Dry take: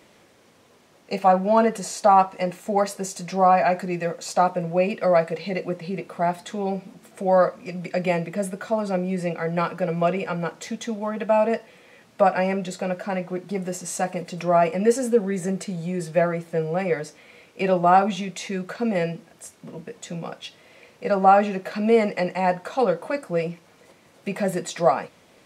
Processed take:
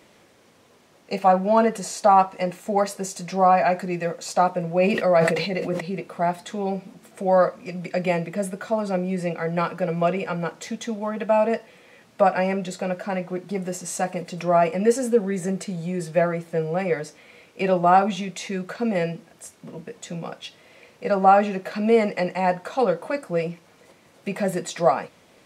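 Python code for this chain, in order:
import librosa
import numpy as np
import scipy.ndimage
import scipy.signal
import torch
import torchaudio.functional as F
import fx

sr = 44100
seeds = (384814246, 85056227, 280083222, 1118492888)

y = fx.sustainer(x, sr, db_per_s=44.0, at=(4.74, 5.8), fade=0.02)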